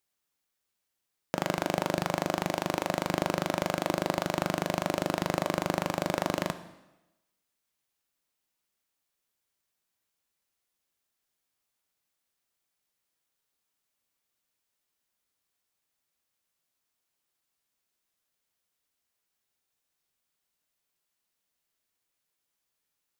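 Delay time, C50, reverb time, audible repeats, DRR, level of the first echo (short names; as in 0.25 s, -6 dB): none, 13.5 dB, 1.0 s, none, 10.5 dB, none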